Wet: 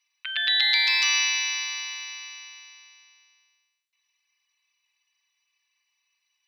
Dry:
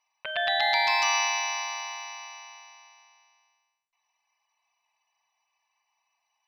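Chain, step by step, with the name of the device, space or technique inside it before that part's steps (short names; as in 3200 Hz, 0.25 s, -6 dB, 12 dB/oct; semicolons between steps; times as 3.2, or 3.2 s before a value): headphones lying on a table (HPF 1500 Hz 24 dB/oct; bell 3800 Hz +6 dB 0.59 oct); gain +2.5 dB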